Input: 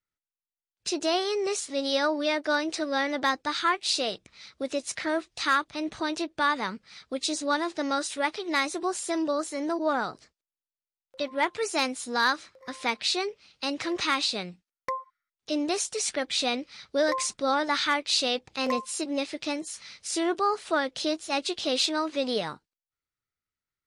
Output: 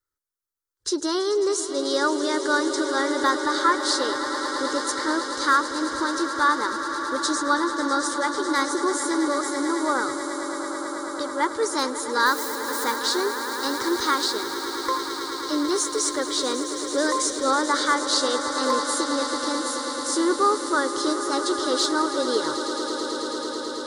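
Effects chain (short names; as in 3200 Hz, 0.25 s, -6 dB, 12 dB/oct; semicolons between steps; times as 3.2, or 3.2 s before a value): 12.26–12.96 switching spikes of -31 dBFS; fixed phaser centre 690 Hz, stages 6; swelling echo 0.109 s, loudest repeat 8, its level -14 dB; gain +6 dB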